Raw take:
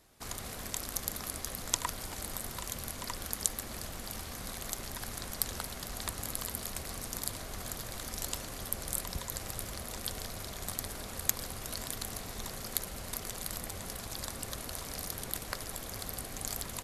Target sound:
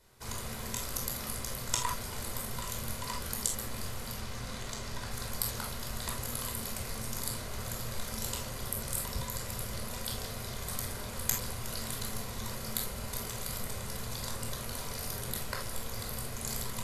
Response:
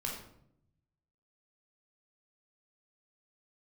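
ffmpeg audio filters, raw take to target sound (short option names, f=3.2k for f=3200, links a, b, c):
-filter_complex "[0:a]asettb=1/sr,asplit=3[a][b][c];[a]atrim=end=4.124[d];[b]atrim=start=4.12:end=5.11,asetpts=PTS-STARTPTS,afade=t=in:d=0.004:c=qsin,afade=t=out:st=0.986:d=0.004:c=qsin,acrossover=split=8200[e][f];[f]acompressor=threshold=-55dB:ratio=4:attack=1:release=60[g];[e][g]amix=inputs=2:normalize=0[h];[c]atrim=start=5.106[i];[d][h]acrossfade=d=0.004:c1=hsin:c2=qsin[j];[j][i]acrossfade=d=0.004:c1=qsin:c2=hsin[k];[1:a]atrim=start_sample=2205,atrim=end_sample=3528,asetrate=40131,aresample=44100[l];[k][l]afir=irnorm=-1:irlink=0"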